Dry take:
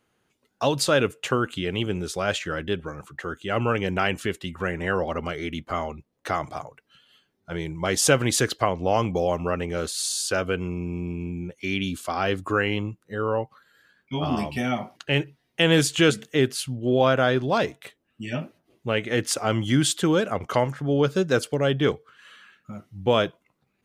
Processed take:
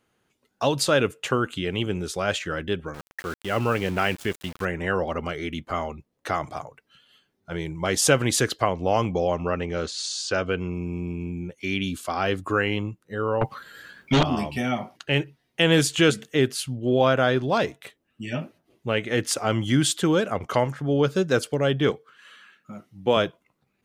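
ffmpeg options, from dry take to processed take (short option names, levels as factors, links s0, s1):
-filter_complex "[0:a]asettb=1/sr,asplit=3[s0][s1][s2];[s0]atrim=end=2.944[s3];[s1]atrim=start=2.94:end=4.65,asetpts=PTS-STARTPTS,afade=t=in:d=0.004:c=qsin,afade=t=out:st=1.706:d=0.004:c=qsin,aeval=exprs='val(0)*gte(abs(val(0)),0.0168)':c=same[s4];[s2]atrim=start=4.646[s5];[s3][s4]acrossfade=d=0.004:c1=hsin:c2=qsin[s6];[s6][s5]acrossfade=d=0.004:c1=qsin:c2=hsin,asettb=1/sr,asplit=3[s7][s8][s9];[s7]atrim=end=9.094[s10];[s8]atrim=start=9.09:end=10.74,asetpts=PTS-STARTPTS,afade=t=in:d=0.004:c=qsin,afade=t=out:st=1.646:d=0.004:c=qsin,lowpass=f=6600:w=0.5412,lowpass=f=6600:w=1.3066[s11];[s9]atrim=start=10.736[s12];[s10][s11]acrossfade=d=0.004:c1=hsin:c2=qsin[s13];[s13][s12]acrossfade=d=0.004:c1=qsin:c2=hsin,asettb=1/sr,asplit=3[s14][s15][s16];[s14]atrim=end=13.414[s17];[s15]atrim=start=13.41:end=14.23,asetpts=PTS-STARTPTS,afade=t=in:d=0.004:c=qsin,afade=t=out:st=0.816:d=0.004:c=qsin,aeval=exprs='0.2*sin(PI/2*3.55*val(0)/0.2)':c=same[s18];[s16]atrim=start=14.226[s19];[s17][s18]acrossfade=d=0.004:c1=hsin:c2=qsin[s20];[s20][s19]acrossfade=d=0.004:c1=qsin:c2=hsin,asettb=1/sr,asplit=3[s21][s22][s23];[s21]atrim=end=21.904[s24];[s22]atrim=start=21.9:end=23.17,asetpts=PTS-STARTPTS,afade=t=in:d=0.004:c=qsin,afade=t=out:st=1.266:d=0.004:c=qsin,highpass=160[s25];[s23]atrim=start=23.166[s26];[s24][s25]acrossfade=d=0.004:c1=hsin:c2=qsin[s27];[s27][s26]acrossfade=d=0.004:c1=qsin:c2=hsin"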